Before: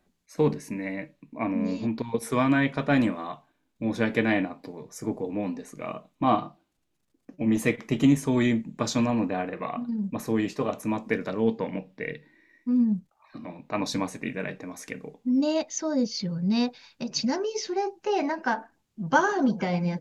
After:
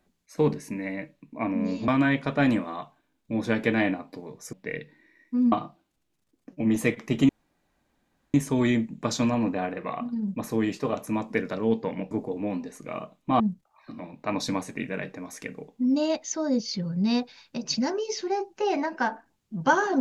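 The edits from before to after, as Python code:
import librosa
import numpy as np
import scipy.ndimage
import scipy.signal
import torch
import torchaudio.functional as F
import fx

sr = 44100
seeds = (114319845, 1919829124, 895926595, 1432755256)

y = fx.edit(x, sr, fx.cut(start_s=1.88, length_s=0.51),
    fx.swap(start_s=5.04, length_s=1.29, other_s=11.87, other_length_s=0.99),
    fx.insert_room_tone(at_s=8.1, length_s=1.05), tone=tone)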